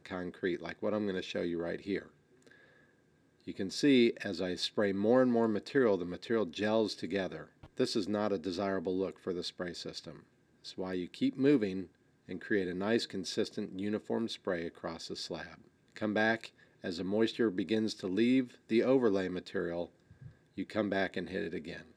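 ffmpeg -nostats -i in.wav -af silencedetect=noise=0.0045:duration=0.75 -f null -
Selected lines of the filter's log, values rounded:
silence_start: 2.51
silence_end: 3.47 | silence_duration: 0.96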